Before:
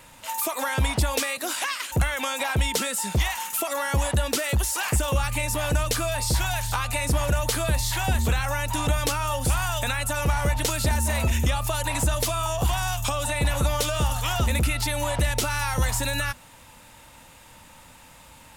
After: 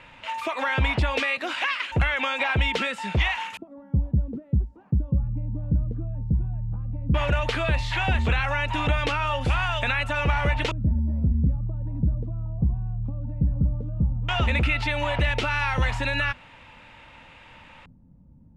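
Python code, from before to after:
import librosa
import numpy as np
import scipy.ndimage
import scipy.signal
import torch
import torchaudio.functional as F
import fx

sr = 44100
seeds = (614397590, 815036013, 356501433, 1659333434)

y = fx.filter_lfo_lowpass(x, sr, shape='square', hz=0.14, low_hz=200.0, high_hz=2600.0, q=1.9)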